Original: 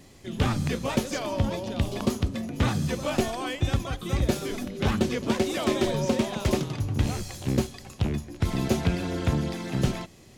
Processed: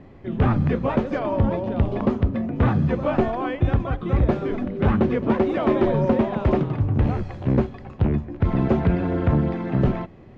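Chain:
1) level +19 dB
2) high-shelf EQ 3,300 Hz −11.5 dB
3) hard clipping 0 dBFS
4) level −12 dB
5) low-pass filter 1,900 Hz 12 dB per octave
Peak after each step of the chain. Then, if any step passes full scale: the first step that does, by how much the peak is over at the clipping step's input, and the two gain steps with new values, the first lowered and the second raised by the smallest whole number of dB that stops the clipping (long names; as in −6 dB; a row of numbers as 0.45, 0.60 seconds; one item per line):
+9.0, +8.5, 0.0, −12.0, −11.5 dBFS
step 1, 8.5 dB
step 1 +10 dB, step 4 −3 dB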